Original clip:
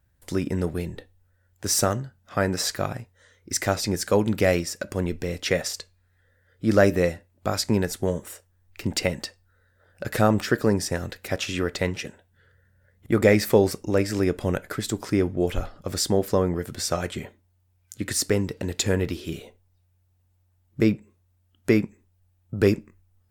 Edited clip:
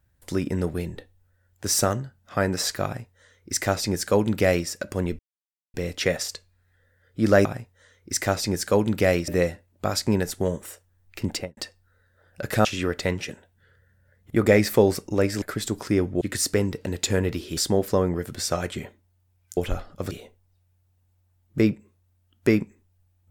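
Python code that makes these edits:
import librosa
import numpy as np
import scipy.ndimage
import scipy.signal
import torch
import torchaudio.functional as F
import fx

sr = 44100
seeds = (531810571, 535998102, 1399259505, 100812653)

y = fx.studio_fade_out(x, sr, start_s=8.9, length_s=0.29)
y = fx.edit(y, sr, fx.duplicate(start_s=2.85, length_s=1.83, to_s=6.9),
    fx.insert_silence(at_s=5.19, length_s=0.55),
    fx.cut(start_s=10.27, length_s=1.14),
    fx.cut(start_s=14.18, length_s=0.46),
    fx.swap(start_s=15.43, length_s=0.54, other_s=17.97, other_length_s=1.36), tone=tone)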